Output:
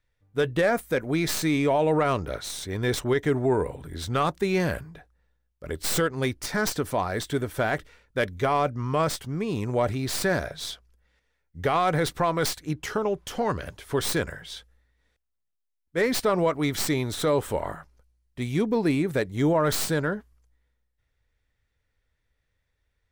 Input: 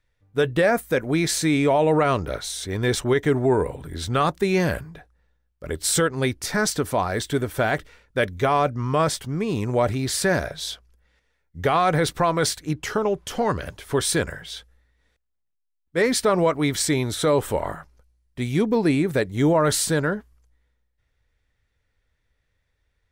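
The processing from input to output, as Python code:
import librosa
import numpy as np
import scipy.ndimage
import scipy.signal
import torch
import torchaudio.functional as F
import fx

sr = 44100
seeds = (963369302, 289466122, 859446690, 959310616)

y = fx.tracing_dist(x, sr, depth_ms=0.069)
y = y * librosa.db_to_amplitude(-3.5)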